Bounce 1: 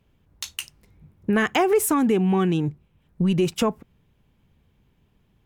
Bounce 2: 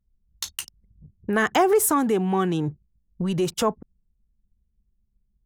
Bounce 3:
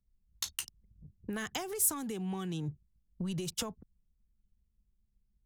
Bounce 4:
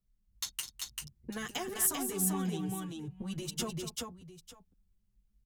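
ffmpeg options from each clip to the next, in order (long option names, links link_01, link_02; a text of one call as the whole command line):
ffmpeg -i in.wav -filter_complex "[0:a]anlmdn=0.0398,equalizer=frequency=2500:width_type=o:width=0.58:gain=-9,acrossover=split=450[link_01][link_02];[link_01]alimiter=limit=-24dB:level=0:latency=1:release=199[link_03];[link_03][link_02]amix=inputs=2:normalize=0,volume=3dB" out.wav
ffmpeg -i in.wav -filter_complex "[0:a]acrossover=split=150|3000[link_01][link_02][link_03];[link_02]acompressor=threshold=-35dB:ratio=6[link_04];[link_01][link_04][link_03]amix=inputs=3:normalize=0,volume=-5dB" out.wav
ffmpeg -i in.wav -filter_complex "[0:a]aecho=1:1:207|391|899:0.299|0.708|0.141,asplit=2[link_01][link_02];[link_02]adelay=7.5,afreqshift=0.4[link_03];[link_01][link_03]amix=inputs=2:normalize=1,volume=2.5dB" out.wav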